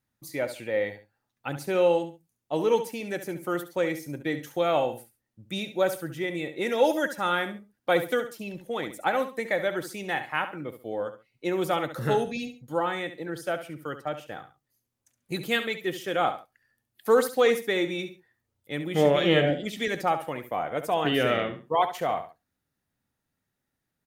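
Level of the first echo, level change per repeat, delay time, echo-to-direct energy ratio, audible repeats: -11.0 dB, -11.5 dB, 69 ms, -10.5 dB, 2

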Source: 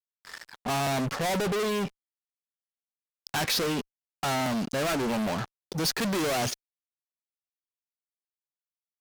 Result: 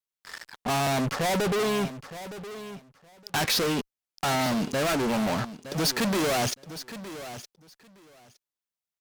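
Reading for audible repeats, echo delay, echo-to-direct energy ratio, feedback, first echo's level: 2, 915 ms, -13.5 dB, 16%, -13.5 dB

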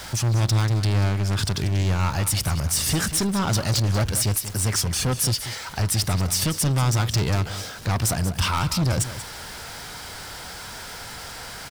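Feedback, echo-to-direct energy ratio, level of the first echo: no regular repeats, -12.5 dB, -12.5 dB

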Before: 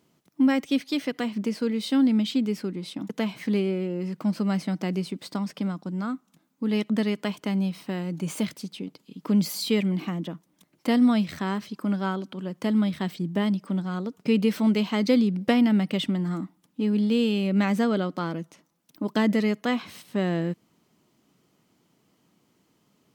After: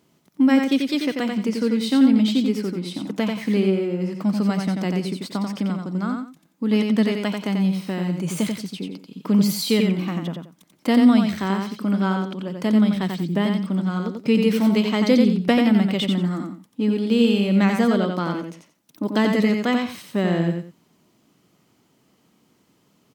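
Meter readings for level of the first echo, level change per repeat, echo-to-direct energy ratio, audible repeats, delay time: -4.5 dB, -12.5 dB, -4.5 dB, 2, 89 ms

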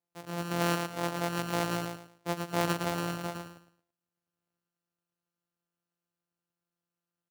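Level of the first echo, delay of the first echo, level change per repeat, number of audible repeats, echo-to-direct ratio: -4.5 dB, 111 ms, -11.0 dB, 3, -4.0 dB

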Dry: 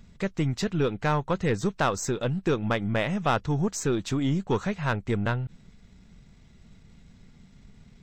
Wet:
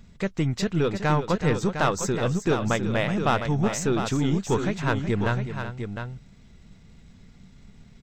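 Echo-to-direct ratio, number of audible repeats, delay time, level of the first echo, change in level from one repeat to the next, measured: -6.0 dB, 2, 372 ms, -11.0 dB, no regular repeats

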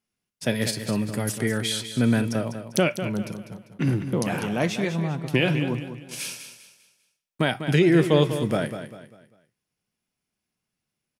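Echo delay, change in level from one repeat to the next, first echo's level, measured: 198 ms, -8.5 dB, -10.0 dB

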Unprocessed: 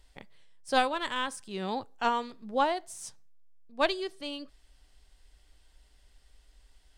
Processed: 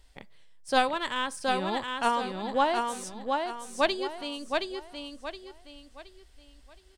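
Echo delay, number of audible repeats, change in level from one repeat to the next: 720 ms, 4, -9.5 dB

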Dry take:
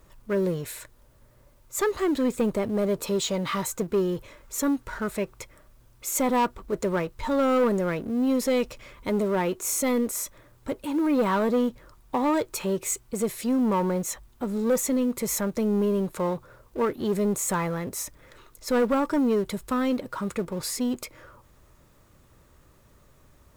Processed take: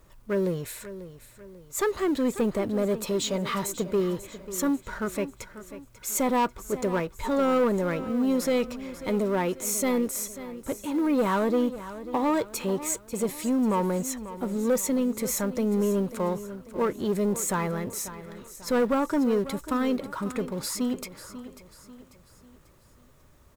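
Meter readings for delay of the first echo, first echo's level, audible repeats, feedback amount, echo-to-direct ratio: 542 ms, -14.0 dB, 3, 44%, -13.0 dB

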